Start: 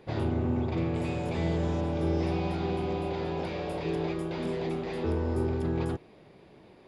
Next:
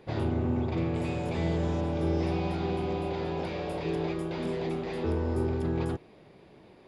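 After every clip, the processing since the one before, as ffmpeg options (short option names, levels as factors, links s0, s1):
-af anull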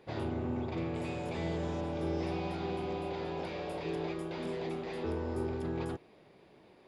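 -af "lowshelf=f=210:g=-6.5,volume=0.668"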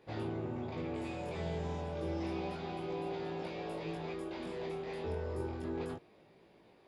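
-af "flanger=delay=17.5:depth=5.5:speed=0.3"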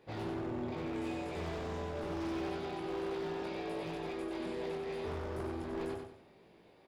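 -af "aeval=exprs='0.0188*(abs(mod(val(0)/0.0188+3,4)-2)-1)':c=same,aecho=1:1:94|188|282|376:0.562|0.202|0.0729|0.0262"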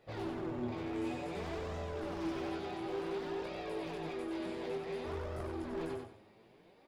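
-af "flanger=delay=1.5:depth=8.1:regen=37:speed=0.56:shape=sinusoidal,volume=1.41"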